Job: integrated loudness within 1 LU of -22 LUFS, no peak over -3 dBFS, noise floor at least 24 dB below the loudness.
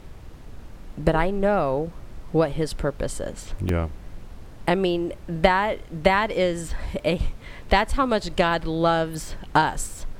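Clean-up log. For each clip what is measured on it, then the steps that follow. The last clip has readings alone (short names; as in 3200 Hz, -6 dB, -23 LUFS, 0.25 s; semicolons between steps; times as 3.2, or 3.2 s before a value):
dropouts 2; longest dropout 2.3 ms; noise floor -42 dBFS; noise floor target -48 dBFS; loudness -24.0 LUFS; peak -1.5 dBFS; loudness target -22.0 LUFS
-> interpolate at 3.69/7, 2.3 ms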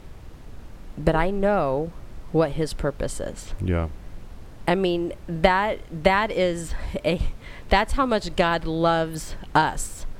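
dropouts 0; noise floor -42 dBFS; noise floor target -48 dBFS
-> noise print and reduce 6 dB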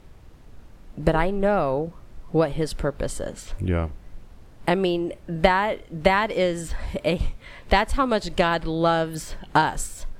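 noise floor -47 dBFS; noise floor target -48 dBFS
-> noise print and reduce 6 dB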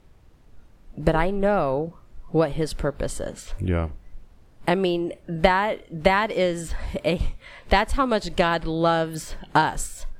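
noise floor -52 dBFS; loudness -24.0 LUFS; peak -1.5 dBFS; loudness target -22.0 LUFS
-> gain +2 dB; limiter -3 dBFS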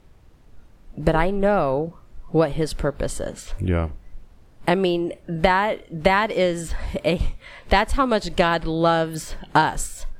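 loudness -22.5 LUFS; peak -3.0 dBFS; noise floor -50 dBFS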